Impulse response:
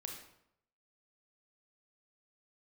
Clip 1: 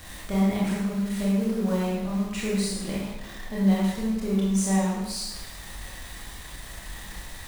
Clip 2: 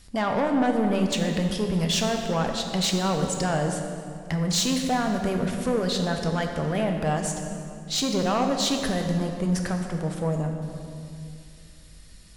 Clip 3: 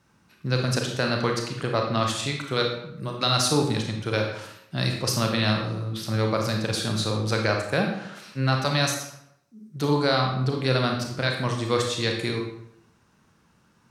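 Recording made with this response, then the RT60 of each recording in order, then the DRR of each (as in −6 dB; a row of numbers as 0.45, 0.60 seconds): 3; 1.0, 2.5, 0.75 seconds; −6.0, 3.0, 1.5 decibels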